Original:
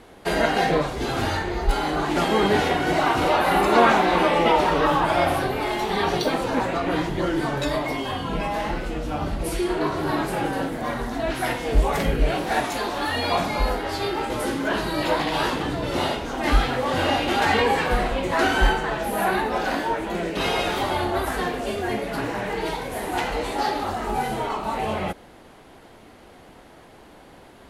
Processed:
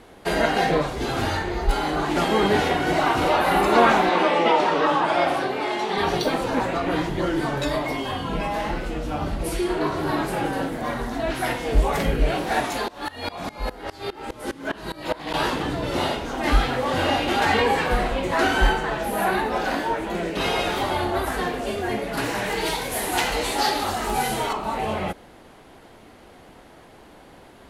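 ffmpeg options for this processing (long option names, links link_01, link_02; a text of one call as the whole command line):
ffmpeg -i in.wav -filter_complex "[0:a]asettb=1/sr,asplit=3[link_01][link_02][link_03];[link_01]atrim=end=4.094[link_04];[link_02]atrim=start=4.09:end=5.98,asetpts=PTS-STARTPTS,afade=type=in:duration=0.004:curve=qsin,afade=type=out:start_time=1.886:duration=0.004:curve=qsin,highpass=210,lowpass=7600[link_05];[link_03]atrim=start=5.976[link_06];[link_04][link_05]acrossfade=duration=0.004:curve1=hsin:curve2=qsin[link_07];[link_07][link_06]acrossfade=duration=0.004:curve1=qsin:curve2=hsin,asettb=1/sr,asplit=3[link_08][link_09][link_10];[link_08]atrim=end=12.884[link_11];[link_09]atrim=start=12.88:end=15.34,asetpts=PTS-STARTPTS,afade=type=in:duration=0.004:curve=qsin,afade=type=out:start_time=2.456:duration=0.004:curve=qsin,aeval=exprs='val(0)*pow(10,-22*if(lt(mod(-4.9*n/s,1),2*abs(-4.9)/1000),1-mod(-4.9*n/s,1)/(2*abs(-4.9)/1000),(mod(-4.9*n/s,1)-2*abs(-4.9)/1000)/(1-2*abs(-4.9)/1000))/20)':channel_layout=same[link_12];[link_10]atrim=start=15.336[link_13];[link_11][link_12]acrossfade=duration=0.004:curve1=hsin:curve2=qsin[link_14];[link_14][link_13]acrossfade=duration=0.004:curve1=qsin:curve2=hsin,asettb=1/sr,asplit=3[link_15][link_16][link_17];[link_15]atrim=end=22.174[link_18];[link_16]atrim=start=22.17:end=24.53,asetpts=PTS-STARTPTS,afade=type=in:duration=0.004:curve=qsin,afade=type=out:start_time=2.356:duration=0.004:curve=qsin,highshelf=frequency=2600:gain=11.5[link_19];[link_17]atrim=start=24.526[link_20];[link_18][link_19]acrossfade=duration=0.004:curve1=hsin:curve2=qsin[link_21];[link_21][link_20]acrossfade=duration=0.004:curve1=qsin:curve2=hsin" out.wav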